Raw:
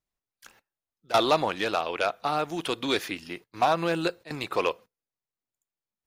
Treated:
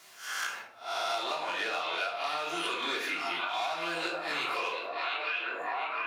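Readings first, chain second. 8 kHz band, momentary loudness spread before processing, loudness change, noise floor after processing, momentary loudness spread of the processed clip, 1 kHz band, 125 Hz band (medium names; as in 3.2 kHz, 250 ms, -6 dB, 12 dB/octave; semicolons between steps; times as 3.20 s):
+0.5 dB, 11 LU, -5.0 dB, -50 dBFS, 3 LU, -4.0 dB, -19.5 dB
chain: reverse spectral sustain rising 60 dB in 0.38 s; in parallel at -9 dB: wavefolder -23.5 dBFS; on the sum: bass shelf 440 Hz -9 dB; on a send: repeats whose band climbs or falls 706 ms, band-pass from 2.8 kHz, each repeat -0.7 oct, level -5.5 dB; on the sum: simulated room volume 480 m³, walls furnished, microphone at 3.2 m; compression 2:1, threshold -39 dBFS, peak gain reduction 14.5 dB; frequency weighting A; three bands compressed up and down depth 100%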